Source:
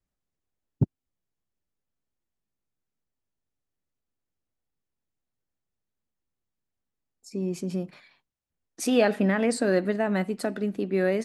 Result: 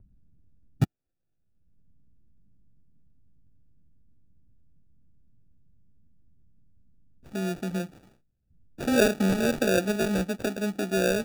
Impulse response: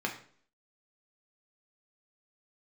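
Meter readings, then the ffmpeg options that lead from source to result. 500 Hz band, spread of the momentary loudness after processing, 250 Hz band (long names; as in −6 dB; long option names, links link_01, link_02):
−1.0 dB, 11 LU, −0.5 dB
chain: -filter_complex "[0:a]acrossover=split=230[link_01][link_02];[link_01]acompressor=mode=upward:threshold=-35dB:ratio=2.5[link_03];[link_02]acrusher=samples=42:mix=1:aa=0.000001[link_04];[link_03][link_04]amix=inputs=2:normalize=0"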